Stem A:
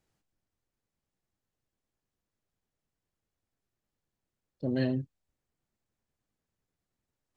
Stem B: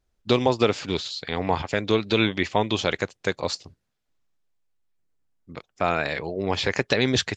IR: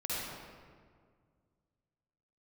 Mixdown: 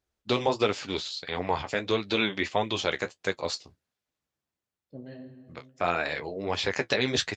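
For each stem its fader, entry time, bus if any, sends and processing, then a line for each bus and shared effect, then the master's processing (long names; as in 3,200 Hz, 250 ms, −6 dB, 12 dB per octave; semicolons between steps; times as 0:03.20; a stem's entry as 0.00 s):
+2.0 dB, 0.30 s, send −23.5 dB, high-shelf EQ 4,700 Hz −9 dB; automatic ducking −20 dB, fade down 0.95 s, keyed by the second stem
+1.0 dB, 0.00 s, no send, parametric band 130 Hz −3 dB 2.2 octaves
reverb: on, RT60 1.9 s, pre-delay 46 ms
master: high-pass filter 48 Hz; low-shelf EQ 320 Hz −3 dB; flanger 1.5 Hz, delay 9.8 ms, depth 5.8 ms, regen −37%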